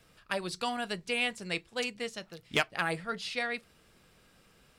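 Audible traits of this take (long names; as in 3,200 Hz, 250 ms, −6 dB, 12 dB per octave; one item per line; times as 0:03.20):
background noise floor −64 dBFS
spectral slope −3.0 dB per octave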